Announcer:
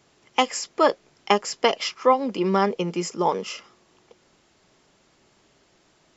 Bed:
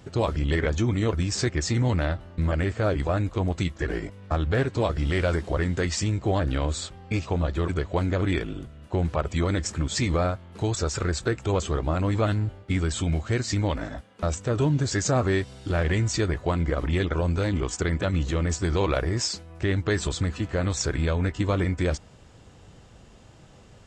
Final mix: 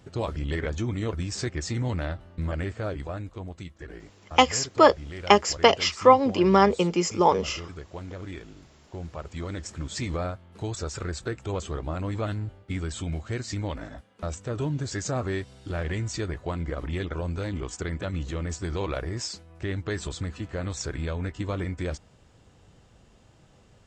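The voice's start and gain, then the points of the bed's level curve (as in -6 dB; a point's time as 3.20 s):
4.00 s, +2.5 dB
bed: 2.62 s -5 dB
3.60 s -13.5 dB
8.82 s -13.5 dB
10.01 s -6 dB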